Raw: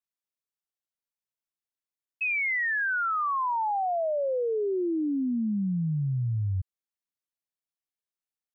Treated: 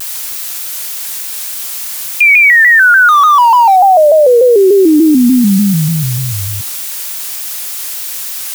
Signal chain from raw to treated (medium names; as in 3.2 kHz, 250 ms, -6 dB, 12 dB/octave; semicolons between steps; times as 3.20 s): 3.09–3.76 s: median filter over 15 samples; high-pass 460 Hz 12 dB/octave; added noise blue -54 dBFS; loudness maximiser +34.5 dB; vibrato with a chosen wave square 3.4 Hz, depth 100 cents; trim -1 dB